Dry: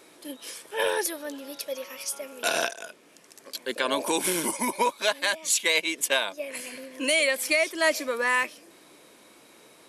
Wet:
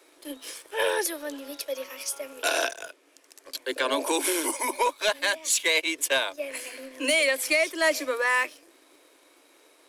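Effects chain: Chebyshev high-pass 260 Hz, order 10; waveshaping leveller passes 1; trim -2.5 dB

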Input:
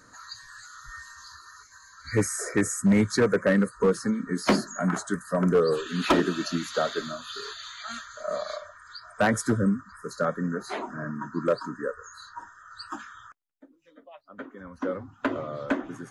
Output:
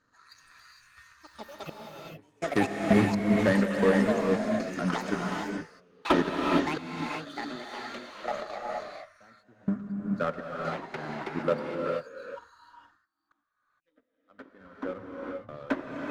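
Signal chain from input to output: low-pass 4.3 kHz 12 dB/octave; ever faster or slower copies 160 ms, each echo +6 st, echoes 3, each echo -6 dB; trance gate "xxx.xxx...x.x.x" 62 bpm -24 dB; power-law waveshaper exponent 1.4; gated-style reverb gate 490 ms rising, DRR 0 dB

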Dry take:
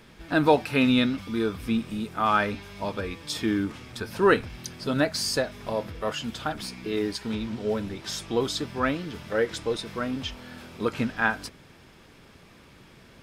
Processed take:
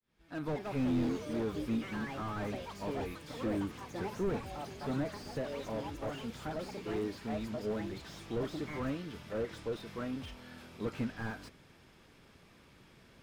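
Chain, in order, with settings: fade-in on the opening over 1.00 s; ever faster or slower copies 298 ms, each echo +5 st, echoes 3, each echo -6 dB; slew-rate limiter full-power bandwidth 30 Hz; trim -8 dB

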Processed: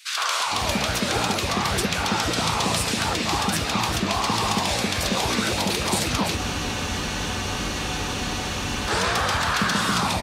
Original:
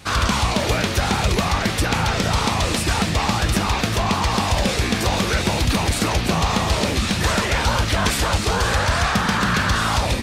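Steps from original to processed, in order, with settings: high-pass 230 Hz 6 dB/octave; three bands offset in time highs, mids, lows 110/460 ms, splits 570/1800 Hz; spectral freeze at 6.39 s, 2.49 s

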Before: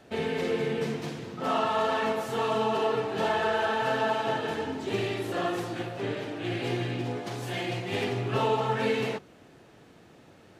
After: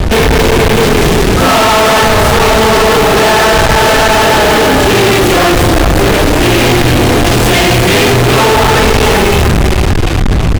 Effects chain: wind noise 84 Hz -33 dBFS; frequency-shifting echo 373 ms, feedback 47%, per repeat -36 Hz, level -7 dB; fuzz box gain 49 dB, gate -44 dBFS; trim +7 dB

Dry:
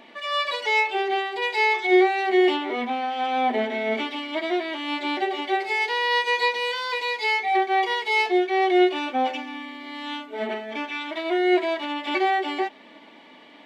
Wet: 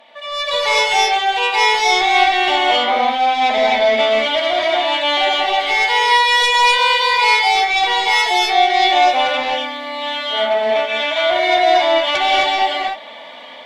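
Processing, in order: resonant low shelf 460 Hz -8 dB, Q 3; sine folder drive 7 dB, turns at -10.5 dBFS; level rider gain up to 10.5 dB; peaking EQ 3.5 kHz +7 dB 0.24 oct; gated-style reverb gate 290 ms rising, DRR -2.5 dB; trim -12 dB

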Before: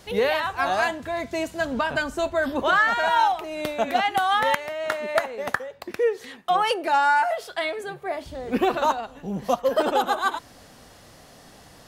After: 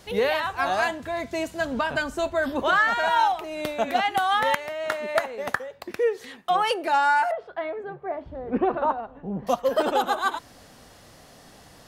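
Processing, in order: 7.31–9.47 s: low-pass 1.3 kHz 12 dB/octave; trim -1 dB

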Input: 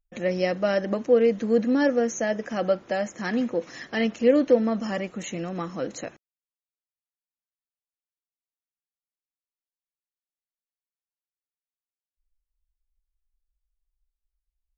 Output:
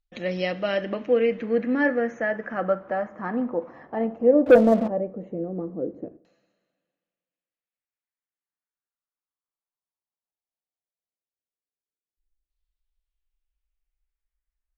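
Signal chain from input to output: two-slope reverb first 0.53 s, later 1.9 s, from -16 dB, DRR 13 dB; LFO low-pass saw down 0.16 Hz 350–4200 Hz; 4.46–4.88 s: waveshaping leveller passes 2; trim -2.5 dB

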